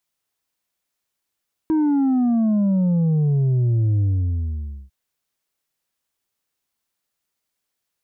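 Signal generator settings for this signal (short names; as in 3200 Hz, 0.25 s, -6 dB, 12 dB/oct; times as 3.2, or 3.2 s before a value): sub drop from 320 Hz, over 3.20 s, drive 4 dB, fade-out 0.89 s, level -16 dB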